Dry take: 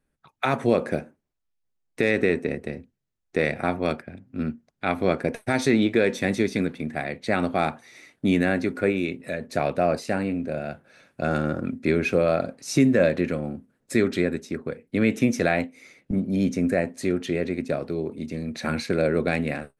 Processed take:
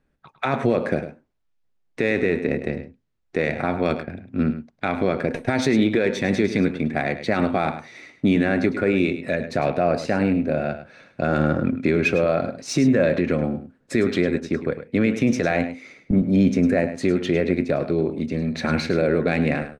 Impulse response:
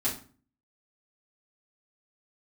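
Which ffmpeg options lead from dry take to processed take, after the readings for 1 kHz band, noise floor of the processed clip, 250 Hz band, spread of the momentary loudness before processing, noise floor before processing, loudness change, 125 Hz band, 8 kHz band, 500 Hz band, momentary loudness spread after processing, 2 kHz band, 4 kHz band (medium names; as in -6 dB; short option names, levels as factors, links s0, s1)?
+2.0 dB, -67 dBFS, +3.5 dB, 10 LU, -76 dBFS, +3.0 dB, +4.0 dB, 0.0 dB, +2.5 dB, 8 LU, +2.0 dB, +2.0 dB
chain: -af "alimiter=limit=0.158:level=0:latency=1:release=73,adynamicsmooth=sensitivity=1.5:basefreq=5300,aecho=1:1:104:0.266,volume=2.11"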